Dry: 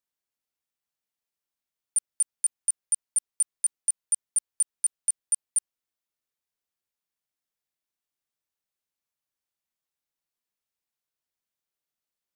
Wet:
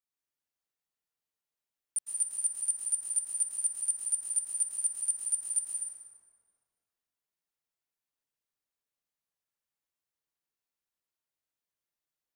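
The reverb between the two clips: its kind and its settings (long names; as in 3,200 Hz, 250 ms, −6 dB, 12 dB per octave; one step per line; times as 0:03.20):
dense smooth reverb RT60 2.1 s, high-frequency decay 0.5×, pre-delay 100 ms, DRR −4 dB
level −7.5 dB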